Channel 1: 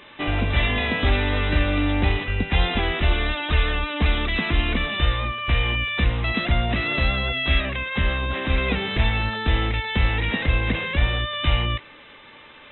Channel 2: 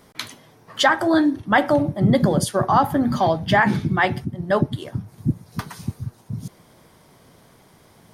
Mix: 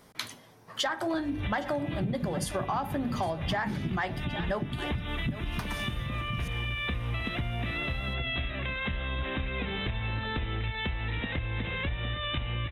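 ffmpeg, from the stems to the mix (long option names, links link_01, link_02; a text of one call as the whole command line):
ffmpeg -i stem1.wav -i stem2.wav -filter_complex "[0:a]acompressor=threshold=-26dB:ratio=6,equalizer=frequency=110:width=1.5:gain=6,adelay=900,volume=-3dB,asplit=2[link_01][link_02];[link_02]volume=-10.5dB[link_03];[1:a]equalizer=frequency=350:width=1.5:gain=-2,bandreject=frequency=50:width_type=h:width=6,bandreject=frequency=100:width_type=h:width=6,bandreject=frequency=150:width_type=h:width=6,bandreject=frequency=200:width_type=h:width=6,bandreject=frequency=250:width_type=h:width=6,bandreject=frequency=300:width_type=h:width=6,asoftclip=type=tanh:threshold=-8dB,volume=-4dB,asplit=3[link_04][link_05][link_06];[link_05]volume=-17.5dB[link_07];[link_06]apad=whole_len=600456[link_08];[link_01][link_08]sidechaincompress=threshold=-33dB:ratio=8:attack=8.2:release=197[link_09];[link_03][link_07]amix=inputs=2:normalize=0,aecho=0:1:810:1[link_10];[link_09][link_04][link_10]amix=inputs=3:normalize=0,acompressor=threshold=-27dB:ratio=10" out.wav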